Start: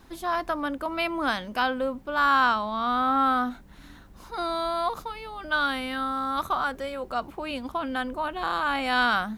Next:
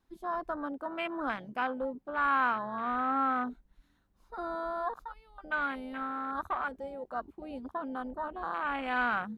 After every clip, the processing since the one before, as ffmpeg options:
-af "afwtdn=0.0398,volume=0.473"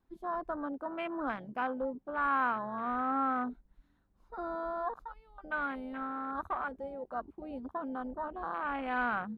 -af "highshelf=f=2300:g=-11"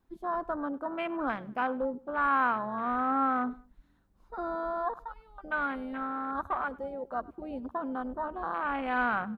-af "aecho=1:1:100|200:0.0794|0.0254,volume=1.5"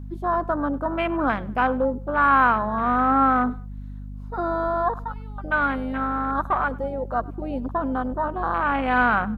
-af "aeval=exprs='val(0)+0.00708*(sin(2*PI*50*n/s)+sin(2*PI*2*50*n/s)/2+sin(2*PI*3*50*n/s)/3+sin(2*PI*4*50*n/s)/4+sin(2*PI*5*50*n/s)/5)':c=same,volume=2.82"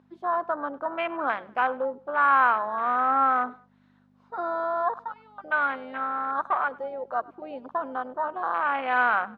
-af "highpass=530,lowpass=4000,volume=0.794"

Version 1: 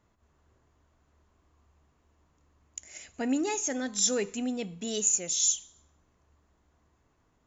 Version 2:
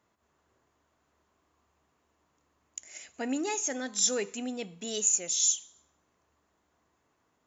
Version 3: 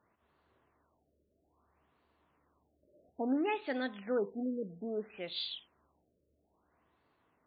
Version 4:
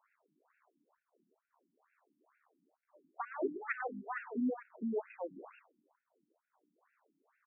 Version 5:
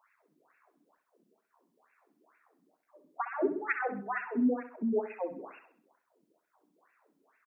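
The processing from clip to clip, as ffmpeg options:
-af "highpass=f=330:p=1"
-af "afftfilt=real='re*lt(b*sr/1024,620*pow(4800/620,0.5+0.5*sin(2*PI*0.6*pts/sr)))':imag='im*lt(b*sr/1024,620*pow(4800/620,0.5+0.5*sin(2*PI*0.6*pts/sr)))':win_size=1024:overlap=0.75"
-af "aecho=1:1:133:0.178,aeval=exprs='max(val(0),0)':c=same,afftfilt=real='re*between(b*sr/1024,230*pow(2000/230,0.5+0.5*sin(2*PI*2.2*pts/sr))/1.41,230*pow(2000/230,0.5+0.5*sin(2*PI*2.2*pts/sr))*1.41)':imag='im*between(b*sr/1024,230*pow(2000/230,0.5+0.5*sin(2*PI*2.2*pts/sr))/1.41,230*pow(2000/230,0.5+0.5*sin(2*PI*2.2*pts/sr))*1.41)':win_size=1024:overlap=0.75,volume=2.82"
-af "aecho=1:1:65|130|195|260:0.299|0.116|0.0454|0.0177,volume=2"

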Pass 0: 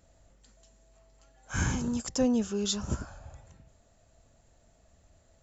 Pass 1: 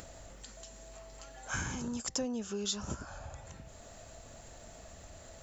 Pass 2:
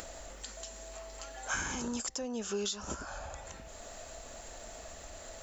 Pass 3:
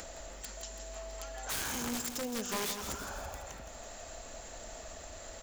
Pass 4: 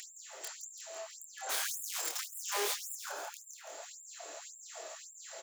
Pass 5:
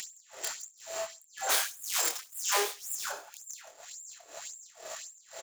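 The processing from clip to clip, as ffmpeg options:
-af "acompressor=threshold=0.0158:ratio=4,lowshelf=f=330:g=-6.5,acompressor=mode=upward:threshold=0.00631:ratio=2.5,volume=1.68"
-af "equalizer=f=120:t=o:w=1.6:g=-13.5,alimiter=level_in=1.88:limit=0.0631:level=0:latency=1:release=290,volume=0.531,volume=2"
-af "aeval=exprs='(mod(31.6*val(0)+1,2)-1)/31.6':c=same,aecho=1:1:166|332|498|664|830|996|1162:0.355|0.202|0.115|0.0657|0.0375|0.0213|0.0122"
-filter_complex "[0:a]asplit=2[s0][s1];[s1]adelay=27,volume=0.75[s2];[s0][s2]amix=inputs=2:normalize=0,afftfilt=real='re*gte(b*sr/1024,280*pow(7200/280,0.5+0.5*sin(2*PI*1.8*pts/sr)))':imag='im*gte(b*sr/1024,280*pow(7200/280,0.5+0.5*sin(2*PI*1.8*pts/sr)))':win_size=1024:overlap=0.75"
-filter_complex "[0:a]asplit=2[s0][s1];[s1]acrusher=bits=6:mix=0:aa=0.000001,volume=0.299[s2];[s0][s2]amix=inputs=2:normalize=0,tremolo=f=2:d=0.89,aecho=1:1:65|130:0.075|0.021,volume=2.11"

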